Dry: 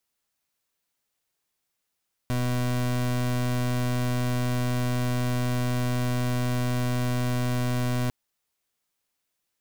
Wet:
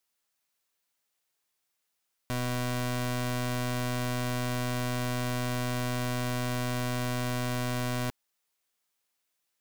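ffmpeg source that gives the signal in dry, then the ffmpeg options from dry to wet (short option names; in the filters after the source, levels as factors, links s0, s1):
-f lavfi -i "aevalsrc='0.0531*(2*lt(mod(124*t,1),0.29)-1)':d=5.8:s=44100"
-af "lowshelf=f=340:g=-7.5"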